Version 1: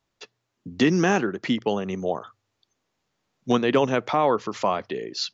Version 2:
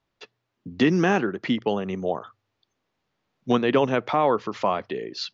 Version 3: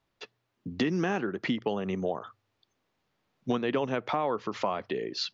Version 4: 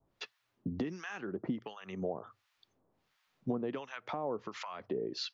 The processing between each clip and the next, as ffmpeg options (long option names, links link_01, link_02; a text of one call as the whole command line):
ffmpeg -i in.wav -af "lowpass=4300" out.wav
ffmpeg -i in.wav -af "acompressor=threshold=-27dB:ratio=3" out.wav
ffmpeg -i in.wav -filter_complex "[0:a]adynamicequalizer=threshold=0.00355:dfrequency=3900:dqfactor=0.7:tfrequency=3900:tqfactor=0.7:attack=5:release=100:ratio=0.375:range=2:mode=cutabove:tftype=bell,acompressor=threshold=-40dB:ratio=2.5,acrossover=split=1000[link_01][link_02];[link_01]aeval=exprs='val(0)*(1-1/2+1/2*cos(2*PI*1.4*n/s))':channel_layout=same[link_03];[link_02]aeval=exprs='val(0)*(1-1/2-1/2*cos(2*PI*1.4*n/s))':channel_layout=same[link_04];[link_03][link_04]amix=inputs=2:normalize=0,volume=5.5dB" out.wav